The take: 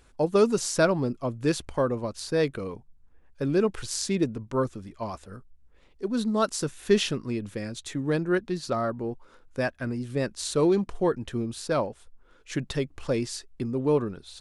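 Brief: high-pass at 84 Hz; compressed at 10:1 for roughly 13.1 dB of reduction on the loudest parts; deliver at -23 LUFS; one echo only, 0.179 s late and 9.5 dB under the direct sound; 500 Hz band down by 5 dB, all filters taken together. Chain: HPF 84 Hz; bell 500 Hz -6.5 dB; compressor 10:1, threshold -33 dBFS; echo 0.179 s -9.5 dB; gain +15 dB

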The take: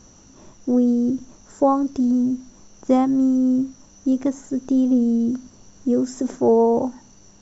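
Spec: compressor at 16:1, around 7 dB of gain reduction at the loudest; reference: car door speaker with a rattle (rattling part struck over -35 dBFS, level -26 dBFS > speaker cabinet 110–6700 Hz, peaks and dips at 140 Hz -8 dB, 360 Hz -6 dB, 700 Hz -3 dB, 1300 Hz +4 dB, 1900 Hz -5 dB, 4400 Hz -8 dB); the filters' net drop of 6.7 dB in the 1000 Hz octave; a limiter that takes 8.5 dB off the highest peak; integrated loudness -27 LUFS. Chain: bell 1000 Hz -7.5 dB; compressor 16:1, threshold -20 dBFS; limiter -21.5 dBFS; rattling part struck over -35 dBFS, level -26 dBFS; speaker cabinet 110–6700 Hz, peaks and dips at 140 Hz -8 dB, 360 Hz -6 dB, 700 Hz -3 dB, 1300 Hz +4 dB, 1900 Hz -5 dB, 4400 Hz -8 dB; gain +3.5 dB

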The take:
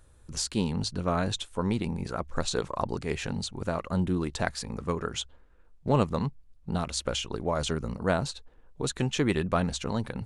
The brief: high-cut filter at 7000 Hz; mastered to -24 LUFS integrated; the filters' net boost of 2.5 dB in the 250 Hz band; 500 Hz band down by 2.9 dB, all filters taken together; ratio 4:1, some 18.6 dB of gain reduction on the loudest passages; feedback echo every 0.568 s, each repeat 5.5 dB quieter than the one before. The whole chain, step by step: LPF 7000 Hz; bell 250 Hz +4.5 dB; bell 500 Hz -5 dB; compressor 4:1, threshold -43 dBFS; feedback echo 0.568 s, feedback 53%, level -5.5 dB; gain +20 dB

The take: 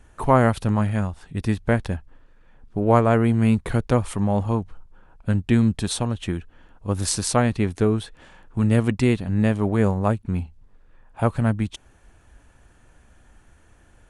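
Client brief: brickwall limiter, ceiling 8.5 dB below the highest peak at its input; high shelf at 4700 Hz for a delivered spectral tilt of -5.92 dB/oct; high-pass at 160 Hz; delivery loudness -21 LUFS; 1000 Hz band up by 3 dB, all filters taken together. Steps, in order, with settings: HPF 160 Hz; bell 1000 Hz +4 dB; high shelf 4700 Hz -3 dB; gain +4 dB; limiter -5 dBFS

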